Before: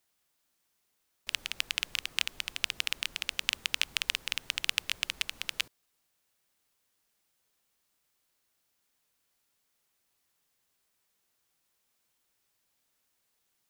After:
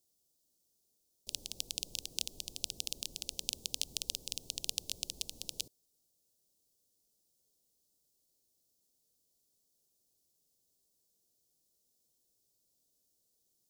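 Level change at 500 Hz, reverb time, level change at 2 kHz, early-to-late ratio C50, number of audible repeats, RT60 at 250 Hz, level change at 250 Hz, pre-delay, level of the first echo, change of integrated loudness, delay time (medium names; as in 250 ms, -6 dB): -1.0 dB, no reverb, -19.5 dB, no reverb, no echo, no reverb, +0.5 dB, no reverb, no echo, -6.5 dB, no echo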